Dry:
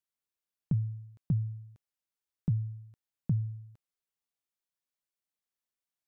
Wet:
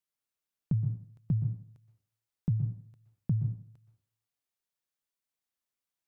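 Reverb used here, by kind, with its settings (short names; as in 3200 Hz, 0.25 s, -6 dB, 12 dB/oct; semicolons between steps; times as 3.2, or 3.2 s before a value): plate-style reverb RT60 0.54 s, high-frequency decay 0.8×, pre-delay 0.11 s, DRR 7.5 dB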